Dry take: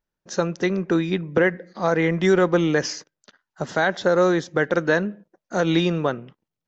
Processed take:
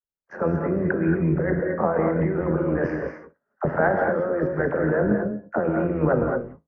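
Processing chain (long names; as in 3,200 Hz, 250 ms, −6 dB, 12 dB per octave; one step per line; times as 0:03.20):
noise gate −44 dBFS, range −25 dB
inverse Chebyshev low-pass filter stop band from 3,400 Hz, stop band 40 dB
parametric band 530 Hz +4.5 dB 0.83 octaves
in parallel at +0.5 dB: output level in coarse steps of 12 dB
on the sum: brickwall limiter −10.5 dBFS, peak gain reduction 11 dB
compressor whose output falls as the input rises −21 dBFS, ratio −0.5
tuned comb filter 53 Hz, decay 0.22 s, harmonics all, mix 50%
all-pass dispersion lows, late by 45 ms, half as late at 660 Hz
amplitude modulation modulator 86 Hz, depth 45%
reverb whose tail is shaped and stops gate 250 ms rising, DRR 2.5 dB
level +5 dB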